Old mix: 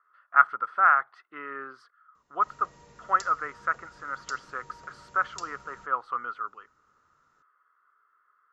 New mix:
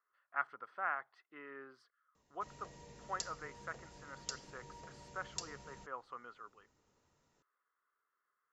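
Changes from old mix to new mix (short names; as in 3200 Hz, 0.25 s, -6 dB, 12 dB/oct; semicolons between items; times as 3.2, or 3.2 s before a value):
speech -8.5 dB; master: add bell 1300 Hz -12.5 dB 0.57 oct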